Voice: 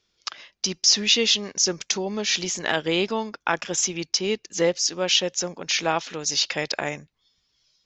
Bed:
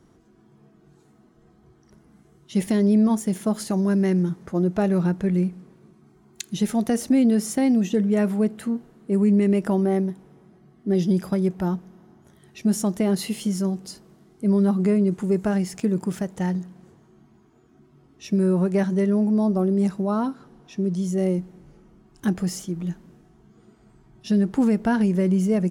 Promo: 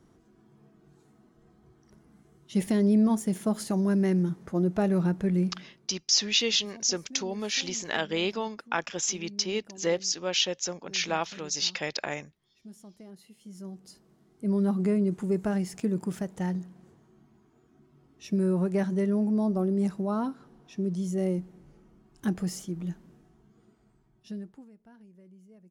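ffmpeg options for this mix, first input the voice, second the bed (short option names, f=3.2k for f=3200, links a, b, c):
-filter_complex "[0:a]adelay=5250,volume=-5.5dB[a];[1:a]volume=17dB,afade=t=out:st=5.58:d=0.41:silence=0.0749894,afade=t=in:st=13.39:d=1.35:silence=0.0891251,afade=t=out:st=23.26:d=1.39:silence=0.0375837[b];[a][b]amix=inputs=2:normalize=0"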